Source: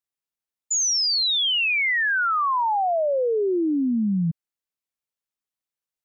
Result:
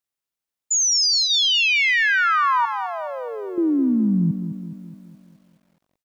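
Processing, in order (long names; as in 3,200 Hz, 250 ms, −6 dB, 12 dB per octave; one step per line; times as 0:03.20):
0:00.77–0:01.29: parametric band 950 Hz → 3,800 Hz −7.5 dB 0.3 octaves
0:02.65–0:03.58: downward expander −14 dBFS
far-end echo of a speakerphone 240 ms, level −26 dB
feedback echo at a low word length 210 ms, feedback 55%, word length 10 bits, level −9.5 dB
level +3 dB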